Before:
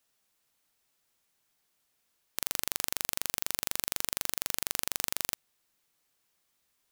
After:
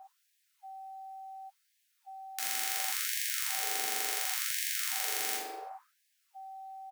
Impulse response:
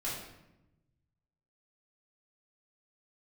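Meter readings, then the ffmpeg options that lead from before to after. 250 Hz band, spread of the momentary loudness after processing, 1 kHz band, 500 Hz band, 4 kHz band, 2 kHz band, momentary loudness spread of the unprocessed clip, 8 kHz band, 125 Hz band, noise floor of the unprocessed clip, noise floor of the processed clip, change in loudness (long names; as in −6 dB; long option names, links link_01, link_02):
−7.0 dB, 18 LU, +6.5 dB, −0.5 dB, +1.5 dB, +4.0 dB, 3 LU, +1.0 dB, below −25 dB, −76 dBFS, −75 dBFS, +1.0 dB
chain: -filter_complex "[0:a]acrossover=split=230|950[link_01][link_02][link_03];[link_01]adelay=170[link_04];[link_02]adelay=380[link_05];[link_04][link_05][link_03]amix=inputs=3:normalize=0,acrossover=split=110|1100|3700[link_06][link_07][link_08][link_09];[link_09]aeval=exprs='clip(val(0),-1,0.141)':channel_layout=same[link_10];[link_06][link_07][link_08][link_10]amix=inputs=4:normalize=0,aeval=exprs='val(0)+0.00501*sin(2*PI*770*n/s)':channel_layout=same[link_11];[1:a]atrim=start_sample=2205,afade=type=out:start_time=0.41:duration=0.01,atrim=end_sample=18522[link_12];[link_11][link_12]afir=irnorm=-1:irlink=0,afftfilt=real='re*gte(b*sr/1024,200*pow(1600/200,0.5+0.5*sin(2*PI*0.7*pts/sr)))':imag='im*gte(b*sr/1024,200*pow(1600/200,0.5+0.5*sin(2*PI*0.7*pts/sr)))':win_size=1024:overlap=0.75"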